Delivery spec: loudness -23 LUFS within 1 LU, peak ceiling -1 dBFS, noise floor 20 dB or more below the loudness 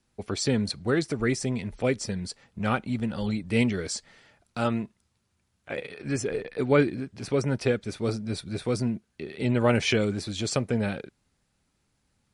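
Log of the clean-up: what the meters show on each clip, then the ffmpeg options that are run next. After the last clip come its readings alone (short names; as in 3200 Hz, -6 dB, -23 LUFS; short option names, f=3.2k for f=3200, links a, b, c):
loudness -28.0 LUFS; peak -10.5 dBFS; loudness target -23.0 LUFS
-> -af "volume=5dB"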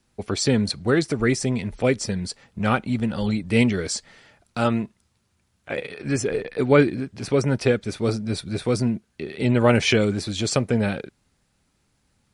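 loudness -23.0 LUFS; peak -5.5 dBFS; noise floor -69 dBFS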